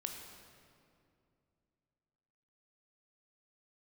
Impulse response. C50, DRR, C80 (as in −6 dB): 4.0 dB, 2.5 dB, 5.0 dB